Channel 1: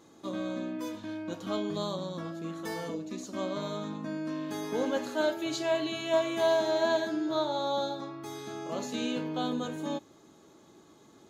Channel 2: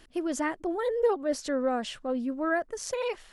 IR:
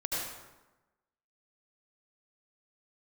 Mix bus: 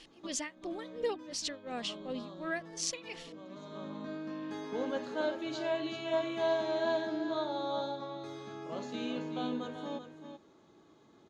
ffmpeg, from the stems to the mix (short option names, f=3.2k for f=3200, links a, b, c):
-filter_complex "[0:a]volume=-5dB,asplit=2[a][b];[b]volume=-9.5dB[c];[1:a]tremolo=f=2.8:d=0.95,aexciter=amount=7.6:drive=4.4:freq=2.1k,volume=-8.5dB,asplit=2[d][e];[e]apad=whole_len=498201[f];[a][f]sidechaincompress=threshold=-46dB:ratio=8:attack=12:release=714[g];[c]aecho=0:1:383:1[h];[g][d][h]amix=inputs=3:normalize=0,lowpass=4.4k"